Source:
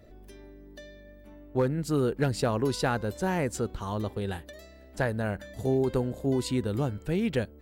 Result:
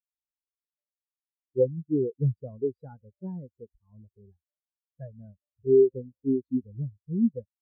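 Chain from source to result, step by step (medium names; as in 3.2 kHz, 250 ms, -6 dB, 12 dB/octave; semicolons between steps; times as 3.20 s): spectral contrast expander 4:1; trim +4 dB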